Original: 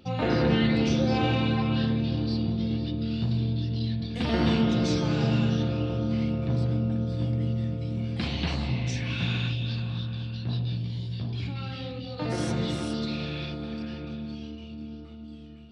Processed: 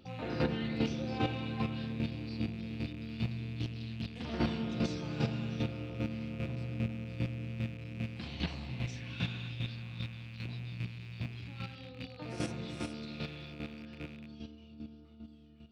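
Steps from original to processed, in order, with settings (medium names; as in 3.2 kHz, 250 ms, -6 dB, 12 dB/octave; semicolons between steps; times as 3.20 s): rattle on loud lows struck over -35 dBFS, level -29 dBFS; square tremolo 2.5 Hz, depth 60%, duty 15%; 3.59–4.38 s: loudspeaker Doppler distortion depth 0.36 ms; trim -5 dB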